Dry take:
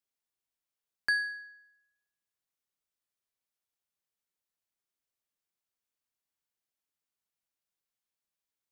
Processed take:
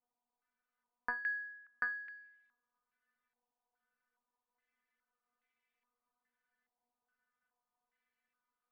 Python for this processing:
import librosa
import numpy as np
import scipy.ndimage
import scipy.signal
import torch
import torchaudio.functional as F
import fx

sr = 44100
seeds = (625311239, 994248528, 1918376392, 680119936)

y = fx.stiff_resonator(x, sr, f0_hz=240.0, decay_s=0.21, stiffness=0.002)
y = y + 10.0 ** (-5.5 / 20.0) * np.pad(y, (int(737 * sr / 1000.0), 0))[:len(y)]
y = fx.filter_held_lowpass(y, sr, hz=2.4, low_hz=870.0, high_hz=2200.0)
y = y * librosa.db_to_amplitude(15.5)